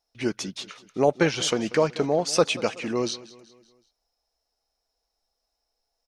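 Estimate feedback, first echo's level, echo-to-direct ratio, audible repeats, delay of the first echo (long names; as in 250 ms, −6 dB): 49%, −19.0 dB, −18.0 dB, 3, 188 ms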